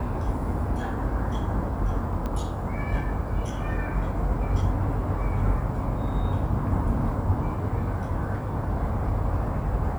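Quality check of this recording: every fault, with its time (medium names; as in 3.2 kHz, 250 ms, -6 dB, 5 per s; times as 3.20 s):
2.26 s: pop -19 dBFS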